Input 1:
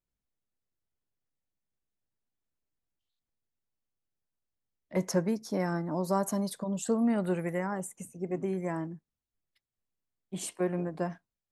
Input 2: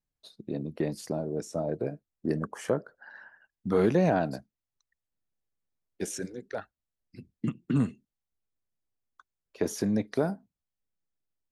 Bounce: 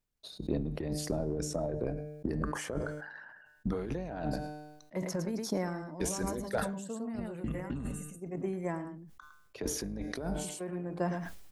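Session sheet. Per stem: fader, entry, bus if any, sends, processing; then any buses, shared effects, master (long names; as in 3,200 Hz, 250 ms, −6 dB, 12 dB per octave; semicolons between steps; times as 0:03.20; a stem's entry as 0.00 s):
−2.5 dB, 0.00 s, no send, echo send −17.5 dB, automatic ducking −16 dB, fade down 0.55 s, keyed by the second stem
+0.5 dB, 0.00 s, no send, echo send −23.5 dB, sub-octave generator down 2 octaves, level −5 dB; tuned comb filter 150 Hz, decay 0.79 s, harmonics all, mix 50%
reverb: not used
echo: single-tap delay 108 ms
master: compressor whose output falls as the input rises −36 dBFS, ratio −1; transient designer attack +5 dB, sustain +1 dB; level that may fall only so fast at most 48 dB per second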